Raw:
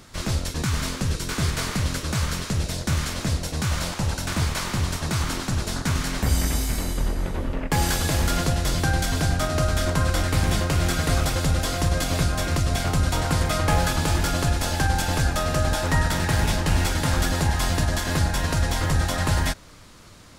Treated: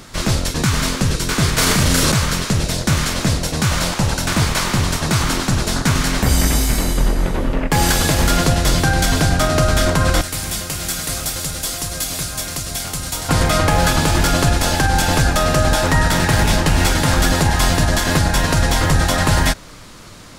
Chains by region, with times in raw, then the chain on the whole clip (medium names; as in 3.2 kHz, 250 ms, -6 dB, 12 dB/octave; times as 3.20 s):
1.58–2.12 s: treble shelf 8.3 kHz +6 dB + doubling 34 ms -2.5 dB + level flattener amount 70%
10.21–13.29 s: pre-emphasis filter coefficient 0.8 + bit-crushed delay 133 ms, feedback 80%, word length 9-bit, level -14 dB
whole clip: peaking EQ 76 Hz -9 dB 0.38 oct; loudness maximiser +12.5 dB; trim -3.5 dB